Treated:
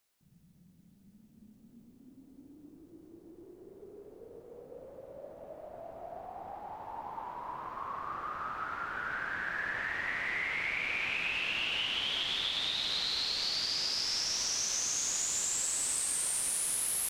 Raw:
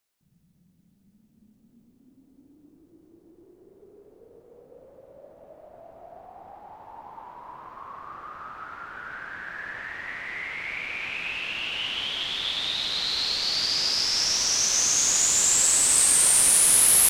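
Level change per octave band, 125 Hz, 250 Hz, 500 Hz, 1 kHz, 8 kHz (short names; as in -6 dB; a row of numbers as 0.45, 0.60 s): -6.0, -5.0, -4.0, -2.0, -12.5 dB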